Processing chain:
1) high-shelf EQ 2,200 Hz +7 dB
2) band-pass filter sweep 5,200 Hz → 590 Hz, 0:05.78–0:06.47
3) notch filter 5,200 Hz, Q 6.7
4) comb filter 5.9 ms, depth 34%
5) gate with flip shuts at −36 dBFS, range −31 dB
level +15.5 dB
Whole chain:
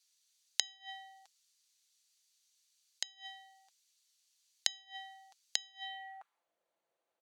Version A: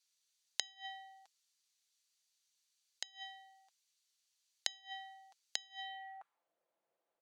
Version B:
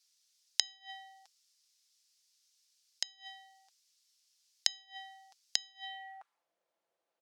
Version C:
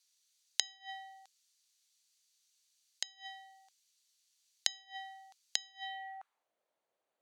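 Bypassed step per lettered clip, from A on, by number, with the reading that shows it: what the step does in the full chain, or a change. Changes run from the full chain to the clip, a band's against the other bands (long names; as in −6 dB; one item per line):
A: 1, 8 kHz band −5.0 dB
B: 3, 4 kHz band +2.5 dB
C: 4, 1 kHz band +3.0 dB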